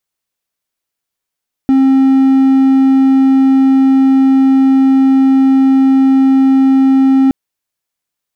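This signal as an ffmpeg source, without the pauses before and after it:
-f lavfi -i "aevalsrc='0.668*(1-4*abs(mod(267*t+0.25,1)-0.5))':d=5.62:s=44100"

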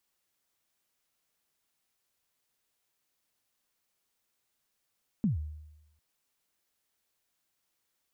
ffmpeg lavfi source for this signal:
-f lavfi -i "aevalsrc='0.0794*pow(10,-3*t/0.95)*sin(2*PI*(240*0.133/log(76/240)*(exp(log(76/240)*min(t,0.133)/0.133)-1)+76*max(t-0.133,0)))':d=0.75:s=44100"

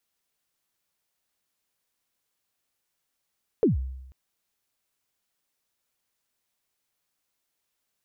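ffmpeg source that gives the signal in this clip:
-f lavfi -i "aevalsrc='0.178*pow(10,-3*t/0.92)*sin(2*PI*(500*0.137/log(65/500)*(exp(log(65/500)*min(t,0.137)/0.137)-1)+65*max(t-0.137,0)))':d=0.49:s=44100"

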